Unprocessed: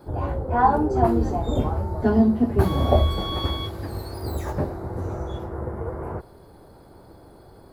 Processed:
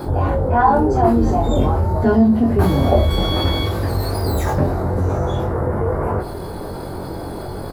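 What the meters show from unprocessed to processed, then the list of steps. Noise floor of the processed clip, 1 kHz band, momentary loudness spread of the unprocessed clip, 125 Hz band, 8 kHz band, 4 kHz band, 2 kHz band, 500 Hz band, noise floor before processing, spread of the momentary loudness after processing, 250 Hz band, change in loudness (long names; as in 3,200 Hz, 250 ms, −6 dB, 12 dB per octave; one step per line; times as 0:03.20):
−29 dBFS, +5.5 dB, 13 LU, +7.5 dB, +10.0 dB, +6.5 dB, +7.5 dB, +6.5 dB, −49 dBFS, 14 LU, +6.0 dB, +6.0 dB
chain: double-tracking delay 22 ms −3 dB
envelope flattener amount 50%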